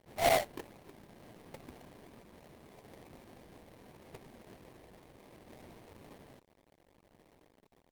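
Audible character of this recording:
aliases and images of a low sample rate 1,400 Hz, jitter 20%
tremolo triangle 0.72 Hz, depth 30%
a quantiser's noise floor 8 bits, dither none
Opus

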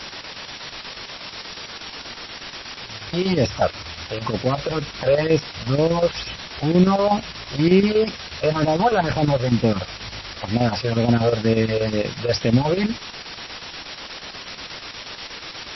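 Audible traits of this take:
phaser sweep stages 8, 2.1 Hz, lowest notch 240–1,400 Hz
a quantiser's noise floor 6 bits, dither triangular
chopped level 8.3 Hz, depth 60%, duty 75%
MP3

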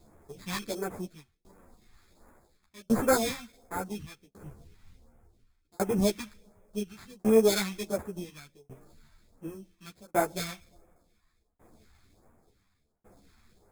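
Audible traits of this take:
aliases and images of a low sample rate 2,900 Hz, jitter 0%
phaser sweep stages 2, 1.4 Hz, lowest notch 460–4,000 Hz
tremolo saw down 0.69 Hz, depth 100%
a shimmering, thickened sound

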